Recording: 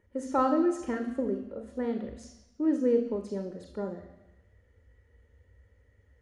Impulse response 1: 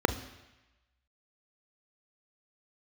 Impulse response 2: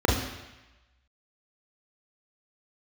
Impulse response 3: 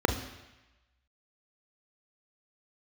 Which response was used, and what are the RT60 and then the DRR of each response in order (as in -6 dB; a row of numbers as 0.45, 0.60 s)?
3; 1.0, 1.0, 1.0 s; 11.0, -2.5, 6.0 dB